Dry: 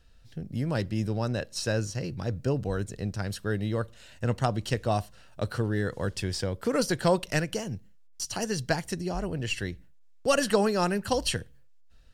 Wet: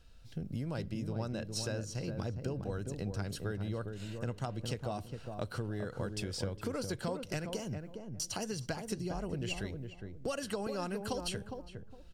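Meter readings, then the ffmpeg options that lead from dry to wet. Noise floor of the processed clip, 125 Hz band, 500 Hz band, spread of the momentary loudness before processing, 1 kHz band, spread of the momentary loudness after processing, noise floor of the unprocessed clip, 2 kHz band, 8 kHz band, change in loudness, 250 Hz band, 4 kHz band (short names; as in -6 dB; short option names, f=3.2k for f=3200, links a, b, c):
-52 dBFS, -7.5 dB, -10.0 dB, 10 LU, -11.0 dB, 5 LU, -52 dBFS, -11.0 dB, -7.5 dB, -9.0 dB, -8.0 dB, -8.0 dB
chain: -filter_complex "[0:a]bandreject=f=1.8k:w=9.2,acompressor=threshold=-35dB:ratio=6,asplit=2[a][b];[b]adelay=410,lowpass=f=810:p=1,volume=-4.5dB,asplit=2[c][d];[d]adelay=410,lowpass=f=810:p=1,volume=0.26,asplit=2[e][f];[f]adelay=410,lowpass=f=810:p=1,volume=0.26,asplit=2[g][h];[h]adelay=410,lowpass=f=810:p=1,volume=0.26[i];[c][e][g][i]amix=inputs=4:normalize=0[j];[a][j]amix=inputs=2:normalize=0"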